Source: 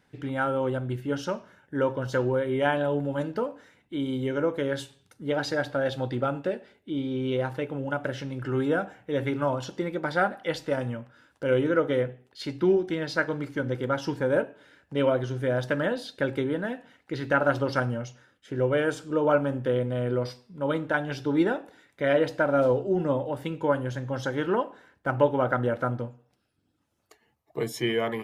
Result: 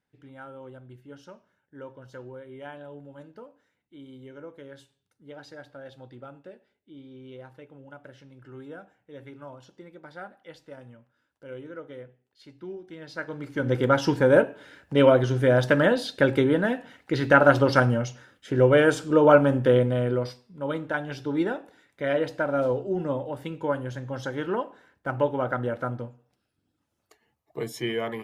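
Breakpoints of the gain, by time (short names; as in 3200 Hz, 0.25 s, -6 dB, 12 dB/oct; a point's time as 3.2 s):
12.78 s -16.5 dB
13.42 s -4 dB
13.76 s +6.5 dB
19.76 s +6.5 dB
20.43 s -2.5 dB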